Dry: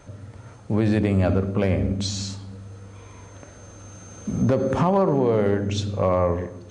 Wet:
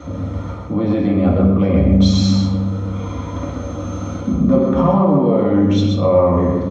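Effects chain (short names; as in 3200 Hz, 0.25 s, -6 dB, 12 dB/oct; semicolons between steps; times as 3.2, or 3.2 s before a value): high shelf 4000 Hz -7.5 dB; reverse; compressor 6:1, threshold -30 dBFS, peak gain reduction 14 dB; reverse; echo 0.129 s -4.5 dB; reverb RT60 0.60 s, pre-delay 3 ms, DRR -3 dB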